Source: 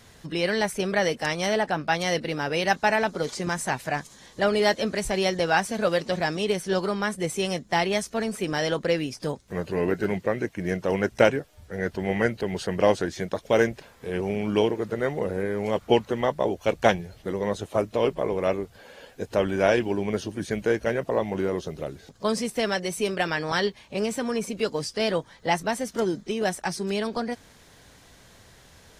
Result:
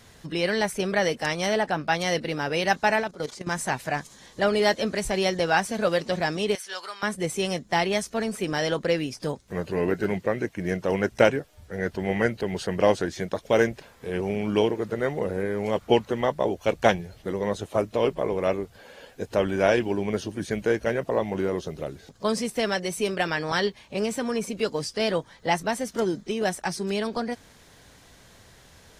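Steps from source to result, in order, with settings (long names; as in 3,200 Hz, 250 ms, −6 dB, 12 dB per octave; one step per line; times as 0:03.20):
0:03.00–0:03.51: output level in coarse steps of 14 dB
0:06.55–0:07.03: high-pass filter 1,300 Hz 12 dB per octave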